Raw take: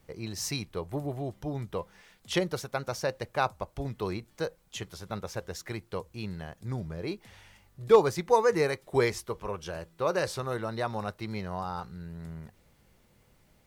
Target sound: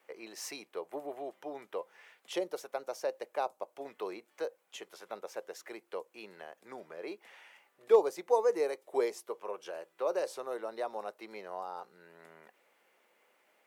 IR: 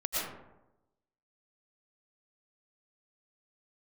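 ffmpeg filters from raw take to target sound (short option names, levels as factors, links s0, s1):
-filter_complex "[0:a]highshelf=f=3300:t=q:w=1.5:g=-6.5,acrossover=split=370|820|4000[s0][s1][s2][s3];[s0]acrusher=bits=2:mix=0:aa=0.5[s4];[s2]acompressor=threshold=0.00282:ratio=6[s5];[s4][s1][s5][s3]amix=inputs=4:normalize=0"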